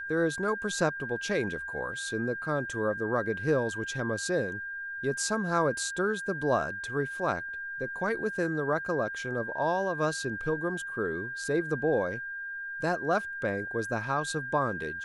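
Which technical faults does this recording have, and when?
tone 1600 Hz -35 dBFS

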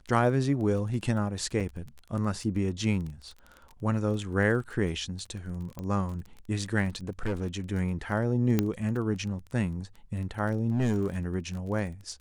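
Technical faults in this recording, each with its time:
crackle 18/s -36 dBFS
1.6–1.61 gap 5.6 ms
5.79 pop -24 dBFS
7.09–7.47 clipped -25.5 dBFS
8.59 pop -11 dBFS
10.71–11.18 clipped -21.5 dBFS

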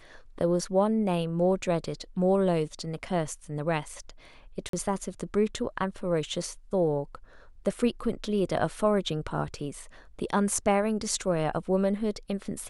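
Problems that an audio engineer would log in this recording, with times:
4.69–4.73 gap 43 ms

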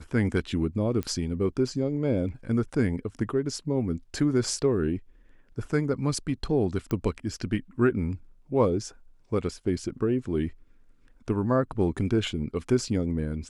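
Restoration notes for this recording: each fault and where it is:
1.03 pop -18 dBFS
6.91 pop -18 dBFS

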